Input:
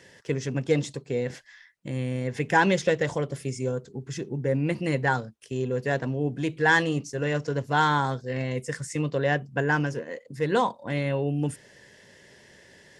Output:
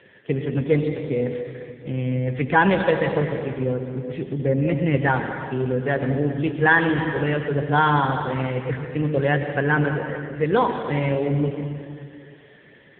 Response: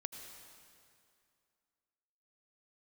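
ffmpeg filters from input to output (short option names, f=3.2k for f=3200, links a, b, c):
-filter_complex "[1:a]atrim=start_sample=2205[a];[0:a][a]afir=irnorm=-1:irlink=0,volume=8dB" -ar 8000 -c:a libopencore_amrnb -b:a 6700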